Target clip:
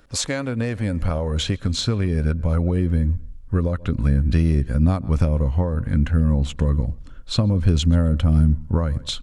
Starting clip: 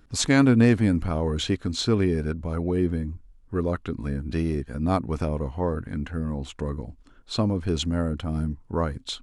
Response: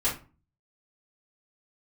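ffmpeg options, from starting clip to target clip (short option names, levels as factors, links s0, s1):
-filter_complex "[0:a]asplit=2[s0][s1];[s1]adelay=129,lowpass=f=4400:p=1,volume=0.0631,asplit=2[s2][s3];[s3]adelay=129,lowpass=f=4400:p=1,volume=0.31[s4];[s0][s2][s4]amix=inputs=3:normalize=0,acrossover=split=720[s5][s6];[s6]acontrast=66[s7];[s5][s7]amix=inputs=2:normalize=0,equalizer=f=540:t=o:w=0.4:g=12,acompressor=threshold=0.0794:ratio=6,asubboost=boost=7:cutoff=190"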